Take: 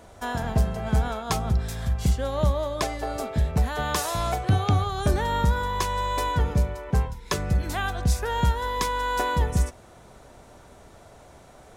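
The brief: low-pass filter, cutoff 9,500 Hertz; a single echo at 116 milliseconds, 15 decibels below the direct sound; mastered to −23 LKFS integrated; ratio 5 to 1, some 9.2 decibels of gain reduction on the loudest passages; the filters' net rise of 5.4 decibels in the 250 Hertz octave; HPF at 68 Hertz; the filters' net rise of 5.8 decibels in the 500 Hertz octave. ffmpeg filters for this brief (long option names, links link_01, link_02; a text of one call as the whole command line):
ffmpeg -i in.wav -af "highpass=68,lowpass=9500,equalizer=frequency=250:width_type=o:gain=6.5,equalizer=frequency=500:width_type=o:gain=5.5,acompressor=threshold=-27dB:ratio=5,aecho=1:1:116:0.178,volume=8dB" out.wav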